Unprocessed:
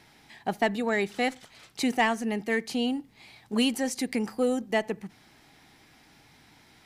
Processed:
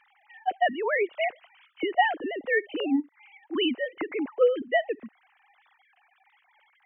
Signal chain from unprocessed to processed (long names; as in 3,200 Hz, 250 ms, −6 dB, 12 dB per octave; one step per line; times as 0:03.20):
three sine waves on the formant tracks
level +1 dB